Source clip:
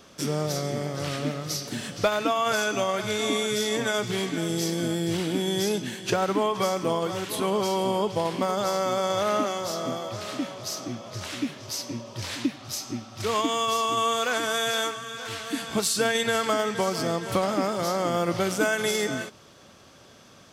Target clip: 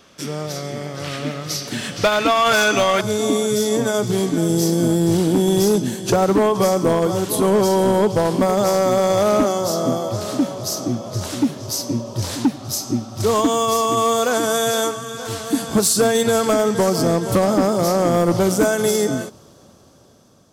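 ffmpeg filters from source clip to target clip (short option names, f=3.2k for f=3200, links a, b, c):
-af "asetnsamples=n=441:p=0,asendcmd='3.01 equalizer g -14.5',equalizer=f=2.3k:t=o:w=1.9:g=3,dynaudnorm=f=520:g=7:m=14dB,volume=10.5dB,asoftclip=hard,volume=-10.5dB"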